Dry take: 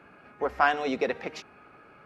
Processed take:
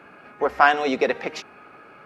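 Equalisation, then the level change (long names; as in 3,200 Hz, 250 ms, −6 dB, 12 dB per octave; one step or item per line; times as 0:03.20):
low-shelf EQ 120 Hz −11 dB
+7.0 dB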